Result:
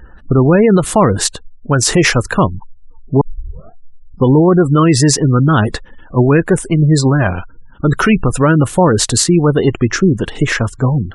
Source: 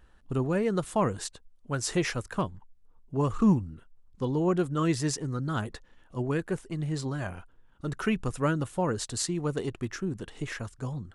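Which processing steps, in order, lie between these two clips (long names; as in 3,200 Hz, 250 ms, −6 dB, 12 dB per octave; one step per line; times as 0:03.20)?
gate on every frequency bin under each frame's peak −30 dB strong
0:03.21: tape start 1.02 s
0:06.53–0:06.99: parametric band 9,000 Hz +10 dB 0.59 octaves
boost into a limiter +22 dB
level −1 dB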